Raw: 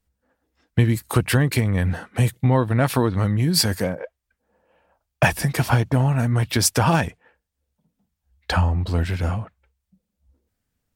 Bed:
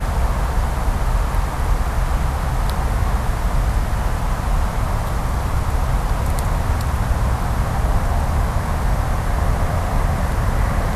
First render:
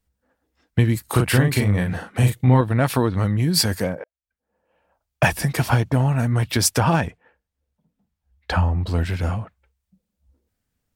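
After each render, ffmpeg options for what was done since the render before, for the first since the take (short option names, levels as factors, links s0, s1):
-filter_complex "[0:a]asettb=1/sr,asplit=3[s0][s1][s2];[s0]atrim=end=1.044[s3];[s1]atrim=start=1.04:end=2.61,asetpts=PTS-STARTPTS,afade=t=in:d=0.004:c=qsin,afade=t=out:st=1.566:d=0.004:c=qsin,asplit=2[s4][s5];[s5]adelay=39,volume=0.631[s6];[s4][s6]amix=inputs=2:normalize=0,atrim=end_sample=69237[s7];[s2]atrim=start=2.606[s8];[s3][s7]acrossfade=d=0.004:c1=hsin:c2=qsin[s9];[s9][s8]acrossfade=d=0.004:c1=qsin:c2=hsin,asettb=1/sr,asplit=3[s10][s11][s12];[s10]atrim=end=6.804[s13];[s11]atrim=start=6.8:end=8.83,asetpts=PTS-STARTPTS,afade=t=in:d=0.004:c=qsin,afade=t=out:st=2.026:d=0.004:c=qsin,highshelf=f=4100:g=-8[s14];[s12]atrim=start=8.826[s15];[s13][s14]acrossfade=d=0.004:c1=hsin:c2=qsin[s16];[s16][s15]acrossfade=d=0.004:c1=qsin:c2=hsin,asplit=2[s17][s18];[s17]atrim=end=4.04,asetpts=PTS-STARTPTS,afade=t=out:st=4.036:d=0.004:c=hsin[s19];[s18]atrim=start=4.04,asetpts=PTS-STARTPTS,afade=t=in:d=1.24[s20];[s19][s20]concat=n=2:v=0:a=1"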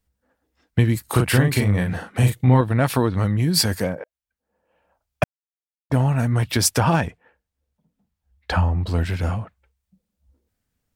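-filter_complex "[0:a]asplit=3[s0][s1][s2];[s0]atrim=end=5.24,asetpts=PTS-STARTPTS,afade=t=out:st=5.236:d=0.004:c=hsin[s3];[s1]atrim=start=5.24:end=5.9,asetpts=PTS-STARTPTS,volume=0[s4];[s2]atrim=start=5.9,asetpts=PTS-STARTPTS,afade=t=in:d=0.004:c=hsin[s5];[s3][s4][s5]concat=n=3:v=0:a=1"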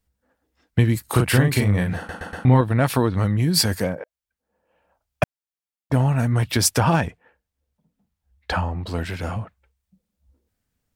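-filter_complex "[0:a]asettb=1/sr,asplit=3[s0][s1][s2];[s0]atrim=end=8.534[s3];[s1]atrim=start=8.53:end=9.36,asetpts=PTS-STARTPTS,afade=t=in:d=0.004:c=qsin,afade=t=out:st=0.826:d=0.004:c=qsin,lowshelf=f=130:g=-10.5[s4];[s2]atrim=start=9.356[s5];[s3][s4]acrossfade=d=0.004:c1=hsin:c2=qsin[s6];[s6][s5]acrossfade=d=0.004:c1=qsin:c2=hsin,asplit=5[s7][s8][s9][s10][s11];[s7]atrim=end=2.092[s12];[s8]atrim=start=1.968:end=2.092[s13];[s9]atrim=start=1.968:end=2.092[s14];[s10]atrim=start=1.968:end=2.092[s15];[s11]atrim=start=2.448[s16];[s12][s13]acrossfade=d=0.004:c1=hsin:c2=hsin[s17];[s17][s14]acrossfade=d=0.004:c1=hsin:c2=hsin[s18];[s18][s15]acrossfade=d=0.004:c1=hsin:c2=hsin[s19];[s19][s16]acrossfade=d=0.004:c1=hsin:c2=hsin"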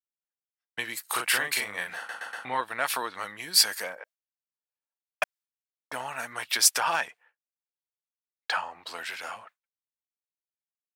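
-af "highpass=1100,agate=range=0.0224:threshold=0.00316:ratio=3:detection=peak"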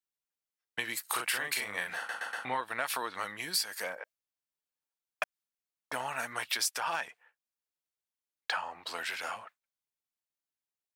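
-af "acompressor=threshold=0.0355:ratio=6"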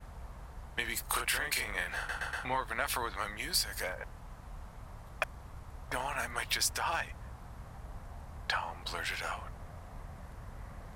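-filter_complex "[1:a]volume=0.0398[s0];[0:a][s0]amix=inputs=2:normalize=0"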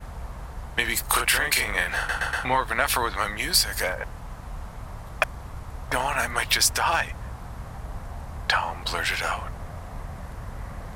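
-af "volume=3.35"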